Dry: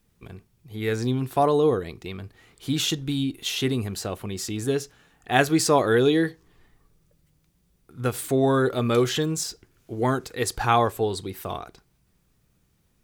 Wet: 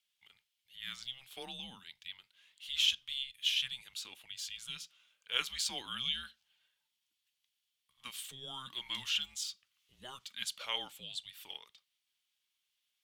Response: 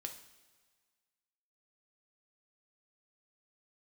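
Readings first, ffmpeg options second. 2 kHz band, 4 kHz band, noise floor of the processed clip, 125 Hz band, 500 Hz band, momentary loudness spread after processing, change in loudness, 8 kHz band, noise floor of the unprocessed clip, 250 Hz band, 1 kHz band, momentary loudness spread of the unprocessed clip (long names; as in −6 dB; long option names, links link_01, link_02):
−12.5 dB, −2.0 dB, −85 dBFS, −33.0 dB, −33.5 dB, 17 LU, −13.0 dB, −11.5 dB, −67 dBFS, −33.5 dB, −24.5 dB, 15 LU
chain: -af "bandpass=frequency=3400:width_type=q:width=3.5:csg=0,aemphasis=mode=production:type=bsi,afreqshift=-260,volume=-3.5dB"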